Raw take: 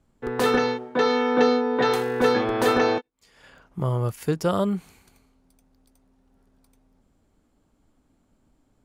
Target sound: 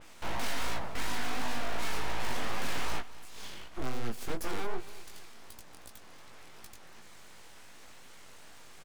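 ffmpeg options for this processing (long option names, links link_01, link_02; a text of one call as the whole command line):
ffmpeg -i in.wav -filter_complex "[0:a]lowpass=5400,acrossover=split=600[link_01][link_02];[link_02]acompressor=mode=upward:threshold=-38dB:ratio=2.5[link_03];[link_01][link_03]amix=inputs=2:normalize=0,alimiter=limit=-16dB:level=0:latency=1,asettb=1/sr,asplit=3[link_04][link_05][link_06];[link_04]atrim=end=4.294[link_07];[link_05]atrim=start=4.29:end=4.74,asetpts=PTS-STARTPTS,afade=type=in:duration=0.004:curve=qsin,afade=type=out:start_time=0.446:duration=0.004:curve=qsin,acrossover=split=250|3000[link_08][link_09][link_10];[link_09]acompressor=threshold=-30dB:ratio=2.5[link_11];[link_08][link_11][link_10]amix=inputs=3:normalize=0[link_12];[link_06]atrim=start=4.736[link_13];[link_07][link_12]acrossfade=duration=0.004:curve1=hsin:curve2=qsin[link_14];[link_14][link_13]acrossfade=duration=0.004:curve1=qsin:curve2=hsin,aeval=exprs='abs(val(0))':channel_layout=same,crystalizer=i=1:c=0,asoftclip=type=tanh:threshold=-29.5dB,flanger=delay=17:depth=6.5:speed=2.7,asplit=2[link_15][link_16];[link_16]aecho=0:1:230|460|690|920:0.126|0.0579|0.0266|0.0123[link_17];[link_15][link_17]amix=inputs=2:normalize=0,adynamicequalizer=threshold=0.00178:dfrequency=3200:dqfactor=0.7:tfrequency=3200:tqfactor=0.7:attack=5:release=100:ratio=0.375:range=2:mode=cutabove:tftype=highshelf,volume=6dB" out.wav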